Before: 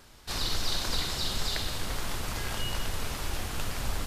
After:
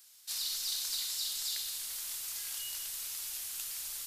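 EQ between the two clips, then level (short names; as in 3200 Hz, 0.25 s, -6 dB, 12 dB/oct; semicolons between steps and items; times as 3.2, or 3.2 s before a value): pre-emphasis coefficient 0.97; high shelf 2400 Hz +8.5 dB; -5.5 dB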